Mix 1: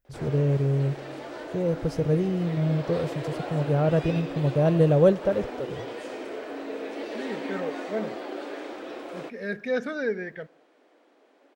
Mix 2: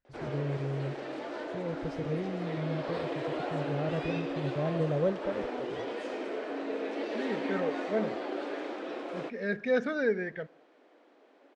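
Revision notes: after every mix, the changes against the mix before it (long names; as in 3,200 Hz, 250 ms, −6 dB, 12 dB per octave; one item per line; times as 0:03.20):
first voice −10.5 dB
master: add high-frequency loss of the air 74 metres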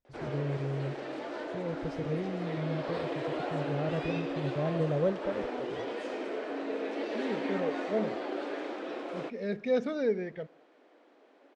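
second voice: add parametric band 1,600 Hz −12.5 dB 0.54 octaves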